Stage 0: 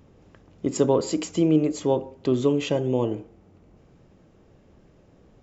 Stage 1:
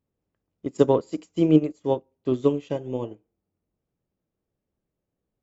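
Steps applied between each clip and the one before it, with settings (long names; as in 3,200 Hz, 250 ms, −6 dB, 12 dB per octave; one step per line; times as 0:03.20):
expander for the loud parts 2.5 to 1, over −37 dBFS
level +4.5 dB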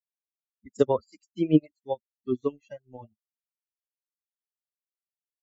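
spectral dynamics exaggerated over time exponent 3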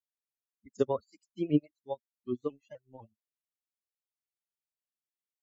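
pitch modulation by a square or saw wave saw up 4 Hz, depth 100 cents
level −6.5 dB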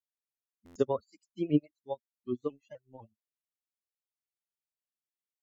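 buffer that repeats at 0:00.65, samples 512, times 8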